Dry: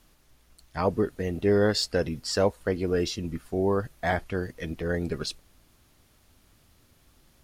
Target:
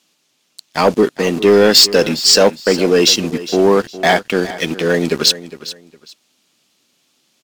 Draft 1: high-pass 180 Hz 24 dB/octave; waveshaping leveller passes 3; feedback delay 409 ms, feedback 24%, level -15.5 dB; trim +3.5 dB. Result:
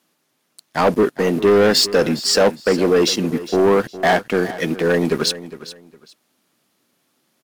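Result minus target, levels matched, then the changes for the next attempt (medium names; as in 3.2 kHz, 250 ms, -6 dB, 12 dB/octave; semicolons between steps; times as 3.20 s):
4 kHz band -4.0 dB
add after high-pass: high-order bell 4.4 kHz +9 dB 2 oct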